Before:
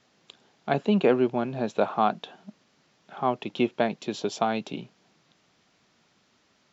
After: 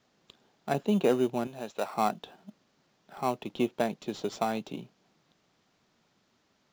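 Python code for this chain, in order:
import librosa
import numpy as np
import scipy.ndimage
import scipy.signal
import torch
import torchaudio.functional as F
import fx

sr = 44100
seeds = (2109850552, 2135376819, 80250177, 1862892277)

p1 = fx.sample_hold(x, sr, seeds[0], rate_hz=3300.0, jitter_pct=0)
p2 = x + F.gain(torch.from_numpy(p1), -8.0).numpy()
p3 = fx.low_shelf(p2, sr, hz=440.0, db=-12.0, at=(1.47, 1.94))
y = F.gain(torch.from_numpy(p3), -6.5).numpy()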